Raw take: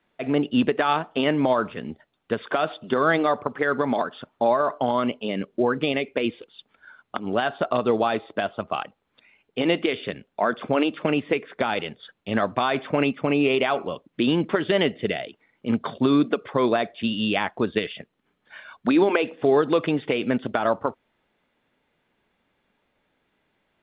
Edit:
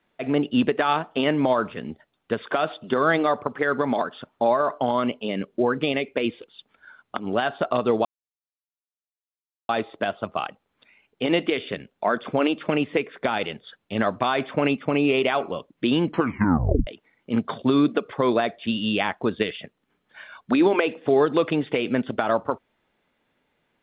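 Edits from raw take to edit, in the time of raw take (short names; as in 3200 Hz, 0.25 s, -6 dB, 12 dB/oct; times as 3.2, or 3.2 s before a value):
8.05 insert silence 1.64 s
14.43 tape stop 0.80 s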